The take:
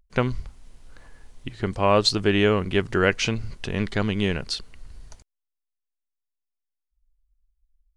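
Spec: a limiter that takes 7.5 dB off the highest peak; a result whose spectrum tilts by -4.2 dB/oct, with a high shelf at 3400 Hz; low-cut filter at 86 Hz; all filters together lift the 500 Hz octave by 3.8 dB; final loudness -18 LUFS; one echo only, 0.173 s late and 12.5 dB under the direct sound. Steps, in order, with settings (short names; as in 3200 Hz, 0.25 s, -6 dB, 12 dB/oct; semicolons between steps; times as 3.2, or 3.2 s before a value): HPF 86 Hz; bell 500 Hz +4.5 dB; high shelf 3400 Hz +8 dB; limiter -9.5 dBFS; echo 0.173 s -12.5 dB; gain +5 dB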